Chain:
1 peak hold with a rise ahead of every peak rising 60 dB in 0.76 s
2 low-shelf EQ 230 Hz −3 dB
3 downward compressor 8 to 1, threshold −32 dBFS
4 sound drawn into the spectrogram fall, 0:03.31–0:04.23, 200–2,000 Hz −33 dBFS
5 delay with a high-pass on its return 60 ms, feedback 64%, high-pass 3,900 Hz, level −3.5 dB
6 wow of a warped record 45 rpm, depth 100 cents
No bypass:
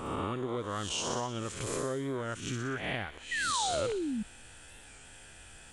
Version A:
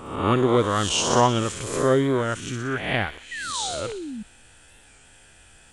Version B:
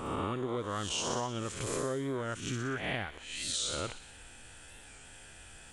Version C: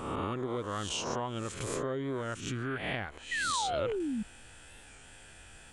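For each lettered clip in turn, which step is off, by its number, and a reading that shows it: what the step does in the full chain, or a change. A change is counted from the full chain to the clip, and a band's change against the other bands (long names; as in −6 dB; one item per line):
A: 3, average gain reduction 6.5 dB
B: 4, 2 kHz band −2.5 dB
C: 5, 8 kHz band −2.5 dB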